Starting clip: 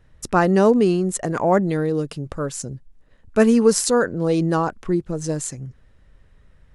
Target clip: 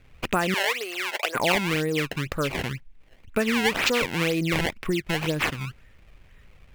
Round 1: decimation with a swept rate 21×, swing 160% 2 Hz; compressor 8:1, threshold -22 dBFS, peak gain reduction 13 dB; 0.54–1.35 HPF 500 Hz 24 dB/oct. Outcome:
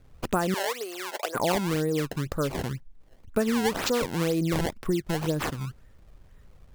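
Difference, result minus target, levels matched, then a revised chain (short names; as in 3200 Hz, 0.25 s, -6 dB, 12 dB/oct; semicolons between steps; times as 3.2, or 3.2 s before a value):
2000 Hz band -6.5 dB
decimation with a swept rate 21×, swing 160% 2 Hz; compressor 8:1, threshold -22 dBFS, peak gain reduction 13 dB; bell 2400 Hz +13 dB 1.1 oct; 0.54–1.35 HPF 500 Hz 24 dB/oct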